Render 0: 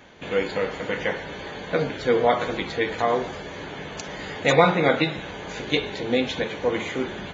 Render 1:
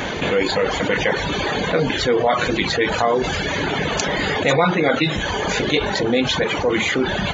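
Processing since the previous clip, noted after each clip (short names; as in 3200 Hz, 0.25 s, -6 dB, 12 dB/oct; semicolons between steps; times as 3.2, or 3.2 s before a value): reverb removal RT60 1.1 s; fast leveller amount 70%; gain -1.5 dB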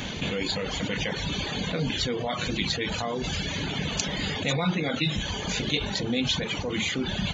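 band shelf 800 Hz -9.5 dB 3 oct; gain -4 dB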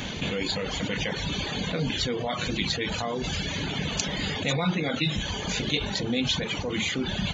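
nothing audible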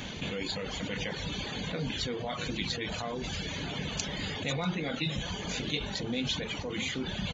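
outdoor echo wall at 110 m, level -11 dB; gain -6 dB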